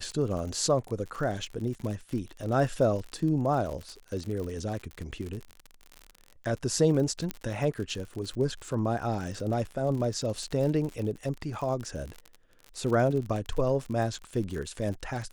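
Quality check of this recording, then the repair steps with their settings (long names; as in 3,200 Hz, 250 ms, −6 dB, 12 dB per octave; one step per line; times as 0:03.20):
surface crackle 53 per second −34 dBFS
0:07.31: click −16 dBFS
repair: click removal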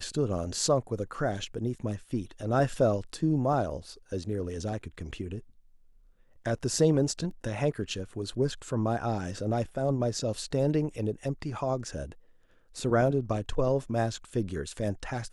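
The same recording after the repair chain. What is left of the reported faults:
0:07.31: click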